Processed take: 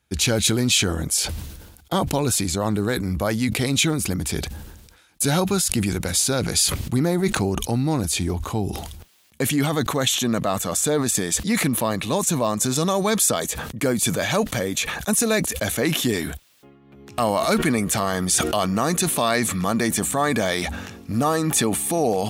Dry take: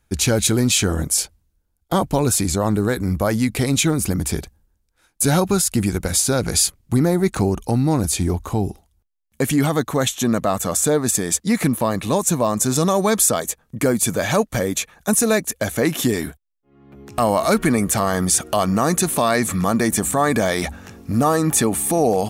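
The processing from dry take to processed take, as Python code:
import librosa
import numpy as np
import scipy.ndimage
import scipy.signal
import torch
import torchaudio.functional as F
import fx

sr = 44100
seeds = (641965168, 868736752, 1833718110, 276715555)

y = scipy.signal.sosfilt(scipy.signal.butter(2, 62.0, 'highpass', fs=sr, output='sos'), x)
y = fx.peak_eq(y, sr, hz=3300.0, db=6.0, octaves=1.3)
y = fx.sustainer(y, sr, db_per_s=47.0)
y = F.gain(torch.from_numpy(y), -4.0).numpy()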